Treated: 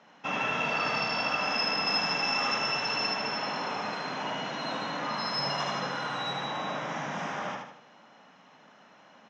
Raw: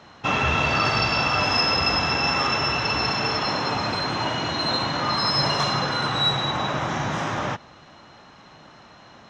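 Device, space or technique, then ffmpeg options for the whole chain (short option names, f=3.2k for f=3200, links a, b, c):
television speaker: -filter_complex "[0:a]asettb=1/sr,asplit=3[a][b][c];[a]atrim=end=1.864[d];[b]atrim=start=1.86:end=3.07,asetpts=PTS-STARTPTS,afade=t=in:d=0.004:c=qsin,afade=t=out:st=1.206:d=0.004:c=qsin,highshelf=f=5k:g=7[e];[c]atrim=start=3.066[f];[d][e]acrossfade=d=0.004:c1=hsin:c2=qsin[g];[g][f]acrossfade=d=0.004:c1=qsin:c2=hsin,highpass=f=180:w=0.5412,highpass=f=180:w=1.3066,equalizer=f=350:t=q:w=4:g=-8,equalizer=f=1.2k:t=q:w=4:g=-3,equalizer=f=4.1k:t=q:w=4:g=-9,lowpass=f=6.6k:w=0.5412,lowpass=f=6.6k:w=1.3066,aecho=1:1:77|154|231|308|385:0.668|0.287|0.124|0.0531|0.0228,volume=-8dB"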